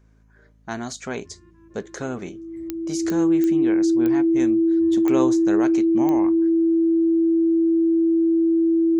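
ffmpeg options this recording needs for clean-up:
-af "adeclick=t=4,bandreject=f=53.7:t=h:w=4,bandreject=f=107.4:t=h:w=4,bandreject=f=161.1:t=h:w=4,bandreject=f=214.8:t=h:w=4,bandreject=f=268.5:t=h:w=4,bandreject=f=330:w=30"

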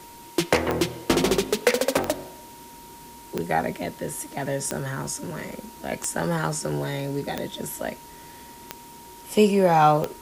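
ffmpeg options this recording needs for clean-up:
-af "adeclick=t=4,bandreject=f=940:w=30,afwtdn=0.004"

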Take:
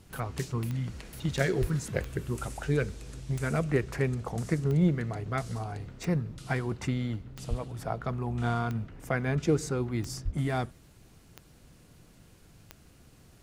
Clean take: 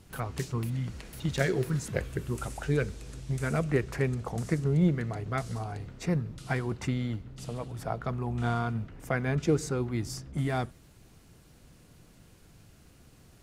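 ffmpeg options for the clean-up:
-filter_complex "[0:a]adeclick=t=4,asplit=3[a][b][c];[a]afade=t=out:st=1.6:d=0.02[d];[b]highpass=f=140:w=0.5412,highpass=f=140:w=1.3066,afade=t=in:st=1.6:d=0.02,afade=t=out:st=1.72:d=0.02[e];[c]afade=t=in:st=1.72:d=0.02[f];[d][e][f]amix=inputs=3:normalize=0,asplit=3[g][h][i];[g]afade=t=out:st=7.49:d=0.02[j];[h]highpass=f=140:w=0.5412,highpass=f=140:w=1.3066,afade=t=in:st=7.49:d=0.02,afade=t=out:st=7.61:d=0.02[k];[i]afade=t=in:st=7.61:d=0.02[l];[j][k][l]amix=inputs=3:normalize=0,asplit=3[m][n][o];[m]afade=t=out:st=10.24:d=0.02[p];[n]highpass=f=140:w=0.5412,highpass=f=140:w=1.3066,afade=t=in:st=10.24:d=0.02,afade=t=out:st=10.36:d=0.02[q];[o]afade=t=in:st=10.36:d=0.02[r];[p][q][r]amix=inputs=3:normalize=0"

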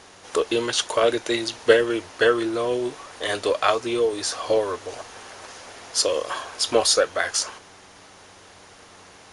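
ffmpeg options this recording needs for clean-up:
-af "bandreject=f=94.5:t=h:w=4,bandreject=f=189:t=h:w=4,bandreject=f=283.5:t=h:w=4,bandreject=f=378:t=h:w=4,bandreject=f=472.5:t=h:w=4"

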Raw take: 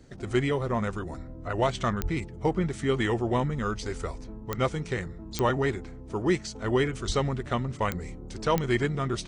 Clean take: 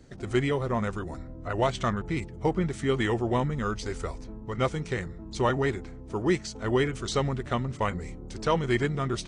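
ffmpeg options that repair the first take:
-filter_complex "[0:a]adeclick=t=4,asplit=3[a][b][c];[a]afade=t=out:st=2.02:d=0.02[d];[b]highpass=f=140:w=0.5412,highpass=f=140:w=1.3066,afade=t=in:st=2.02:d=0.02,afade=t=out:st=2.14:d=0.02[e];[c]afade=t=in:st=2.14:d=0.02[f];[d][e][f]amix=inputs=3:normalize=0,asplit=3[g][h][i];[g]afade=t=out:st=7.06:d=0.02[j];[h]highpass=f=140:w=0.5412,highpass=f=140:w=1.3066,afade=t=in:st=7.06:d=0.02,afade=t=out:st=7.18:d=0.02[k];[i]afade=t=in:st=7.18:d=0.02[l];[j][k][l]amix=inputs=3:normalize=0"

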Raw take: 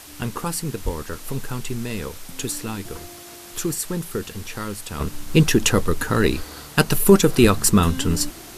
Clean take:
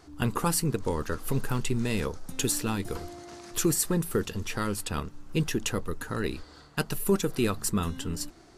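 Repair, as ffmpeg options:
-filter_complex "[0:a]asplit=3[a][b][c];[a]afade=t=out:st=0.84:d=0.02[d];[b]highpass=f=140:w=0.5412,highpass=f=140:w=1.3066,afade=t=in:st=0.84:d=0.02,afade=t=out:st=0.96:d=0.02[e];[c]afade=t=in:st=0.96:d=0.02[f];[d][e][f]amix=inputs=3:normalize=0,asplit=3[g][h][i];[g]afade=t=out:st=7.41:d=0.02[j];[h]highpass=f=140:w=0.5412,highpass=f=140:w=1.3066,afade=t=in:st=7.41:d=0.02,afade=t=out:st=7.53:d=0.02[k];[i]afade=t=in:st=7.53:d=0.02[l];[j][k][l]amix=inputs=3:normalize=0,afwtdn=0.0089,asetnsamples=n=441:p=0,asendcmd='5 volume volume -12dB',volume=0dB"

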